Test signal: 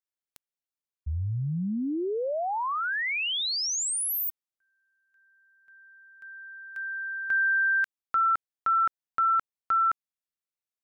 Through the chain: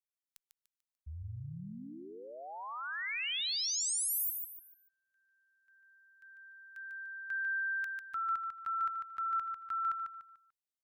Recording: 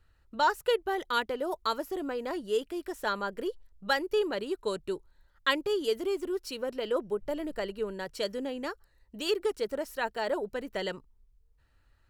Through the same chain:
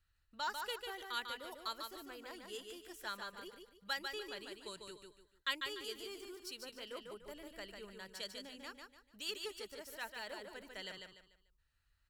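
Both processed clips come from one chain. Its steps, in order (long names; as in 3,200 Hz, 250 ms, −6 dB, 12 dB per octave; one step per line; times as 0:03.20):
guitar amp tone stack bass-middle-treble 5-5-5
repeating echo 147 ms, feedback 33%, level −5 dB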